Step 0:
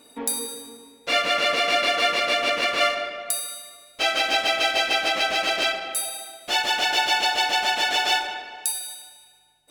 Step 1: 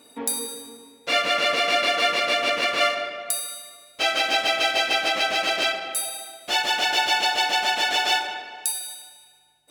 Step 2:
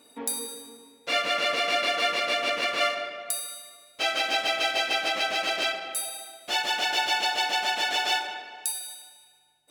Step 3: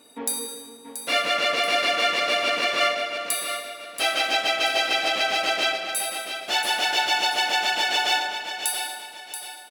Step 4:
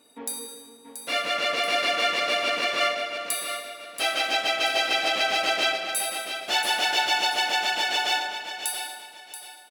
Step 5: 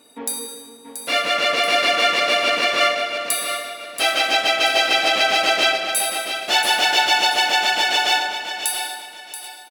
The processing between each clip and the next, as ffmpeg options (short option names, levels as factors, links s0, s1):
-af "highpass=61"
-af "lowshelf=f=110:g=-4.5,volume=0.631"
-af "aecho=1:1:681|1362|2043|2724:0.355|0.124|0.0435|0.0152,volume=1.41"
-af "dynaudnorm=f=380:g=7:m=1.88,volume=0.531"
-af "aecho=1:1:786:0.0944,volume=2.11"